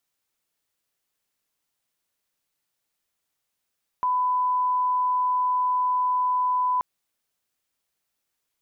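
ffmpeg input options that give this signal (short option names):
-f lavfi -i "sine=f=1000:d=2.78:r=44100,volume=-1.94dB"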